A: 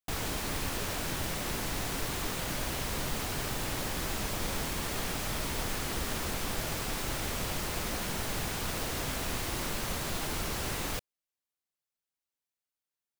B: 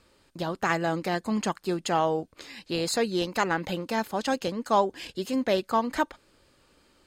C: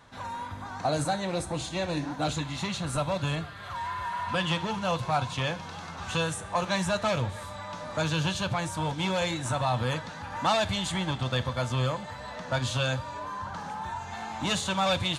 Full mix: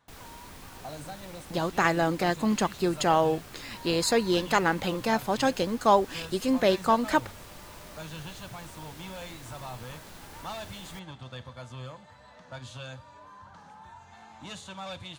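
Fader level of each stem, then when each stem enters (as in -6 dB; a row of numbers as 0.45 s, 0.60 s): -13.5 dB, +2.0 dB, -13.5 dB; 0.00 s, 1.15 s, 0.00 s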